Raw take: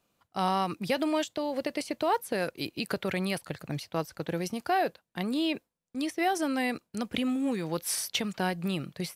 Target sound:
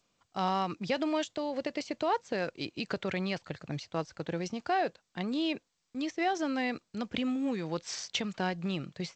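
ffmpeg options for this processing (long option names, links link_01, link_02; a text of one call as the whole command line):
ffmpeg -i in.wav -af "volume=-2.5dB" -ar 16000 -c:a g722 out.g722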